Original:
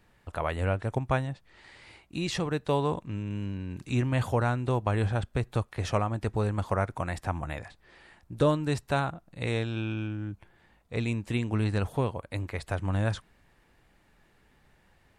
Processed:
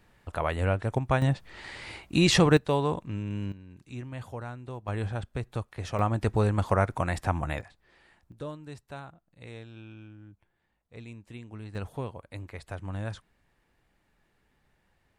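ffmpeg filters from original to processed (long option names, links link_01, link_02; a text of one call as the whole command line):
ffmpeg -i in.wav -af "asetnsamples=nb_out_samples=441:pad=0,asendcmd='1.22 volume volume 10dB;2.57 volume volume 0.5dB;3.52 volume volume -12dB;4.88 volume volume -4.5dB;5.99 volume volume 3.5dB;7.61 volume volume -6dB;8.32 volume volume -14.5dB;11.75 volume volume -7dB',volume=1.5dB" out.wav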